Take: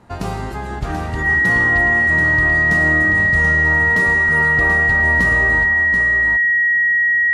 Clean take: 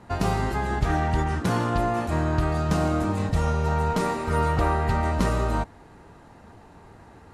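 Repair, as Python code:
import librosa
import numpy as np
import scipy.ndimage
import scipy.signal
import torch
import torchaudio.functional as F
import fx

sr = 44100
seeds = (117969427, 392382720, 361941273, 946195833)

y = fx.notch(x, sr, hz=1900.0, q=30.0)
y = fx.fix_echo_inverse(y, sr, delay_ms=733, level_db=-6.5)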